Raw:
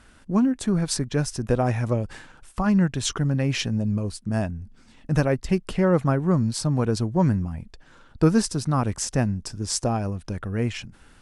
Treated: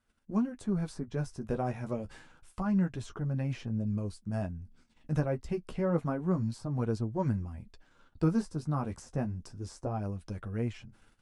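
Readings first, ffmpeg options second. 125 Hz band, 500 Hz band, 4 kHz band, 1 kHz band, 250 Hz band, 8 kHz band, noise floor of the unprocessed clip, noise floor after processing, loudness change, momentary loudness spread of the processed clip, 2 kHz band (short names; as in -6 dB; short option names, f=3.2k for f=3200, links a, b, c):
-9.0 dB, -9.5 dB, -20.5 dB, -10.0 dB, -9.0 dB, -22.5 dB, -53 dBFS, -67 dBFS, -9.5 dB, 9 LU, -13.5 dB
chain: -filter_complex "[0:a]bandreject=f=1.8k:w=21,flanger=delay=8.6:depth=4.7:regen=-25:speed=0.28:shape=sinusoidal,agate=range=-16dB:threshold=-53dB:ratio=16:detection=peak,acrossover=split=1500[a][b];[b]acompressor=threshold=-46dB:ratio=6[c];[a][c]amix=inputs=2:normalize=0,volume=-6dB"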